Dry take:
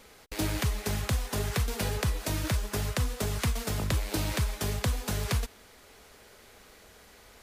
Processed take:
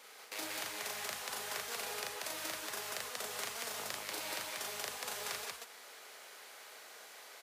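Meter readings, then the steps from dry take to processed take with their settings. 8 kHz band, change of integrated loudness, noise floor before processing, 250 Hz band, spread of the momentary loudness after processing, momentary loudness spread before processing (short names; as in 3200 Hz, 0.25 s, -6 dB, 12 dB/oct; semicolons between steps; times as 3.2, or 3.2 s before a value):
-4.0 dB, -8.5 dB, -55 dBFS, -20.0 dB, 12 LU, 2 LU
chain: HPF 620 Hz 12 dB/oct; compressor, threshold -40 dBFS, peak gain reduction 11.5 dB; loudspeakers at several distances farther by 13 m -2 dB, 64 m -1 dB; gain -1 dB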